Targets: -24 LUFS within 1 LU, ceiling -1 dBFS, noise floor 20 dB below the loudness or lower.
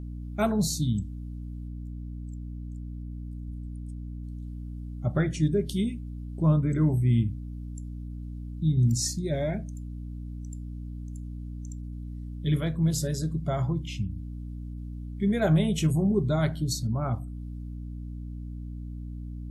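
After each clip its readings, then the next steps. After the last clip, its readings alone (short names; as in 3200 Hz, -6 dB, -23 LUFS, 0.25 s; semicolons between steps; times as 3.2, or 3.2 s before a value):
hum 60 Hz; harmonics up to 300 Hz; hum level -34 dBFS; loudness -30.0 LUFS; peak -12.5 dBFS; loudness target -24.0 LUFS
-> de-hum 60 Hz, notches 5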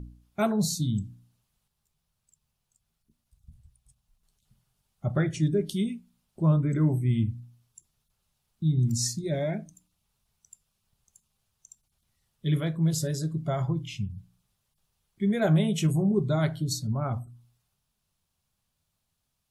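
hum none; loudness -27.5 LUFS; peak -13.0 dBFS; loudness target -24.0 LUFS
-> gain +3.5 dB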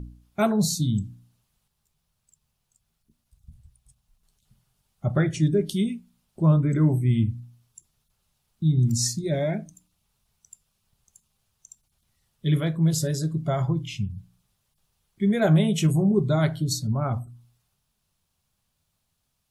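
loudness -24.0 LUFS; peak -9.5 dBFS; noise floor -76 dBFS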